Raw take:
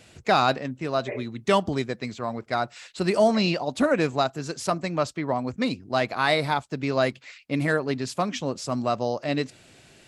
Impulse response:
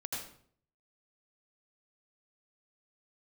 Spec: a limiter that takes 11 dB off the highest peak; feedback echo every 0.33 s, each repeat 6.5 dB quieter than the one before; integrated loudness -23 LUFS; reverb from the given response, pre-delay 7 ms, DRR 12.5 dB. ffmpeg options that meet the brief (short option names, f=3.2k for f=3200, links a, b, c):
-filter_complex "[0:a]alimiter=limit=-19dB:level=0:latency=1,aecho=1:1:330|660|990|1320|1650|1980:0.473|0.222|0.105|0.0491|0.0231|0.0109,asplit=2[a][b];[1:a]atrim=start_sample=2205,adelay=7[c];[b][c]afir=irnorm=-1:irlink=0,volume=-14dB[d];[a][d]amix=inputs=2:normalize=0,volume=6.5dB"